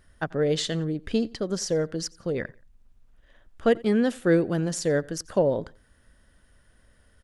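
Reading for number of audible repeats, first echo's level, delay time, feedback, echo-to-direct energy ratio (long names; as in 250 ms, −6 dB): 2, −24.0 dB, 88 ms, 32%, −23.5 dB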